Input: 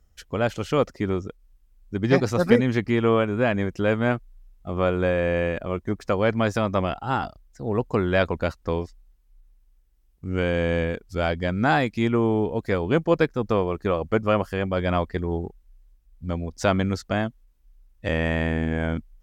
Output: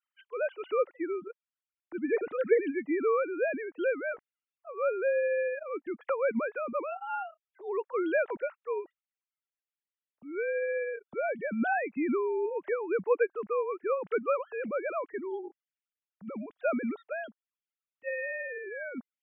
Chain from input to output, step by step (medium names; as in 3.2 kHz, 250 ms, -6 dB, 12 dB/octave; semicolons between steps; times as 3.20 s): formants replaced by sine waves; trim -8 dB